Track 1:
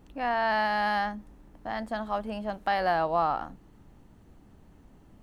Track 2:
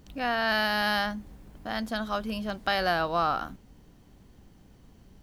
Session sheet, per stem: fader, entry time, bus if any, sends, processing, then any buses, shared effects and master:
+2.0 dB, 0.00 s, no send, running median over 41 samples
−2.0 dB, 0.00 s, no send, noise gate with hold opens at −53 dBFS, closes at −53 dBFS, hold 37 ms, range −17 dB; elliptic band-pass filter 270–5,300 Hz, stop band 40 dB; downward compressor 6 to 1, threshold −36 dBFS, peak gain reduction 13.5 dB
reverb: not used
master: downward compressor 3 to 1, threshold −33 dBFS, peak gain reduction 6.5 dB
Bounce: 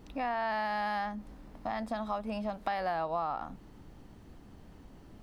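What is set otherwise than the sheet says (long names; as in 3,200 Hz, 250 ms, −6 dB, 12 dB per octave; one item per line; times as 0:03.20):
stem 1: missing running median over 41 samples
stem 2: polarity flipped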